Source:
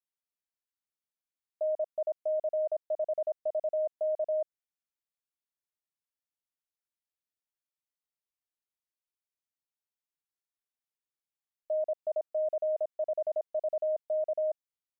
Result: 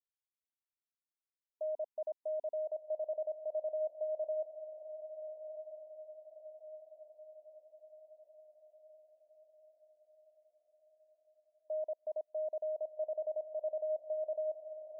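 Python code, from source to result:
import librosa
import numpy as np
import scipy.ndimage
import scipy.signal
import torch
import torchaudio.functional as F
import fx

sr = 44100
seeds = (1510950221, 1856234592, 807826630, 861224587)

y = fx.spec_topn(x, sr, count=32)
y = fx.echo_diffused(y, sr, ms=1334, feedback_pct=52, wet_db=-10.0)
y = y * 10.0 ** (-7.0 / 20.0)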